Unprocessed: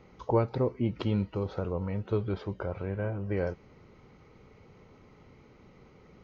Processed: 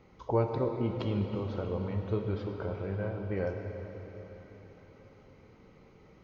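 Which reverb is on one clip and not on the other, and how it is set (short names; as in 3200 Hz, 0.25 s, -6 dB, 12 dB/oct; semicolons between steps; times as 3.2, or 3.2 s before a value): plate-style reverb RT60 4.5 s, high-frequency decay 1×, DRR 3 dB; gain -3.5 dB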